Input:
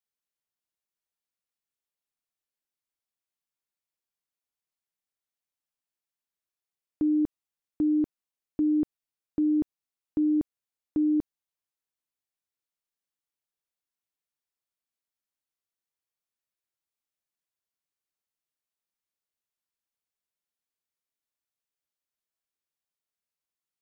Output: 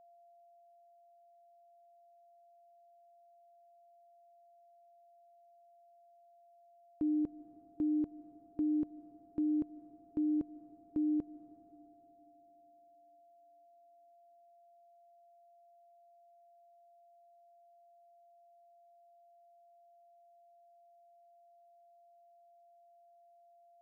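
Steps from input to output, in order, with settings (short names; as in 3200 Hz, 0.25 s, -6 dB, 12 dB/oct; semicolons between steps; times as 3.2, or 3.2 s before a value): whine 690 Hz -51 dBFS; digital reverb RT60 3.8 s, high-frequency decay 0.75×, pre-delay 0.105 s, DRR 16 dB; gain -8 dB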